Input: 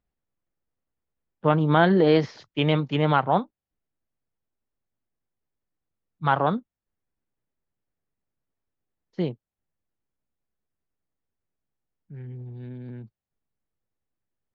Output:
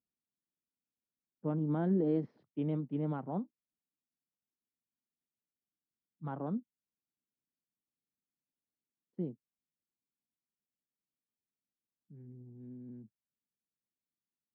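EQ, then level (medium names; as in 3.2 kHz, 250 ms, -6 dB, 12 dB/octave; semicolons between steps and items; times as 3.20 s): band-pass filter 240 Hz, Q 1.8; -6.5 dB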